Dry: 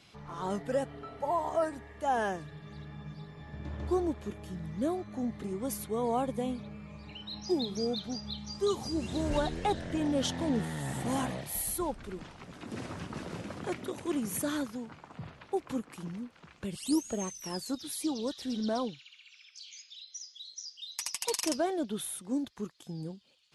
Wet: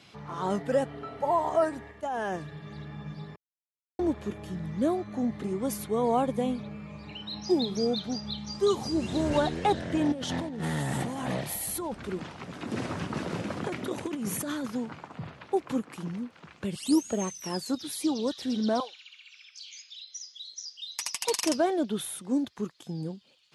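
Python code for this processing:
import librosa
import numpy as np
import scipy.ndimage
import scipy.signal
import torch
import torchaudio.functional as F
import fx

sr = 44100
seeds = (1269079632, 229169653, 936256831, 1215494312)

y = fx.level_steps(x, sr, step_db=18, at=(1.91, 2.34))
y = fx.over_compress(y, sr, threshold_db=-36.0, ratio=-1.0, at=(10.12, 15.07))
y = fx.highpass(y, sr, hz=660.0, slope=24, at=(18.8, 20.09))
y = fx.edit(y, sr, fx.silence(start_s=3.36, length_s=0.63), tone=tone)
y = scipy.signal.sosfilt(scipy.signal.butter(2, 90.0, 'highpass', fs=sr, output='sos'), y)
y = fx.high_shelf(y, sr, hz=6200.0, db=-5.0)
y = y * librosa.db_to_amplitude(5.0)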